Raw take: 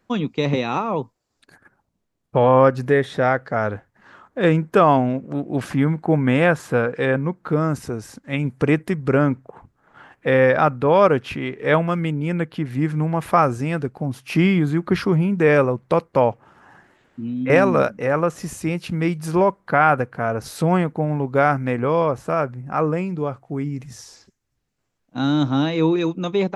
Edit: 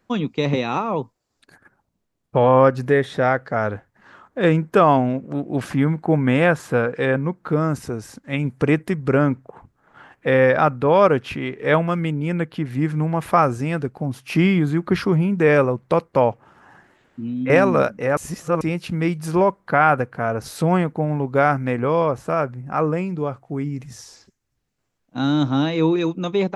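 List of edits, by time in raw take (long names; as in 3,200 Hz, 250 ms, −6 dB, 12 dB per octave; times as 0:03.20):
0:18.17–0:18.61: reverse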